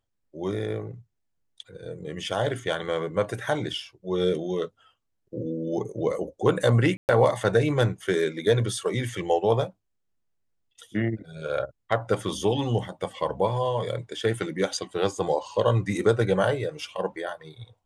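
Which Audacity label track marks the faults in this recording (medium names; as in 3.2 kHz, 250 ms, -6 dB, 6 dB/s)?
6.970000	7.090000	dropout 119 ms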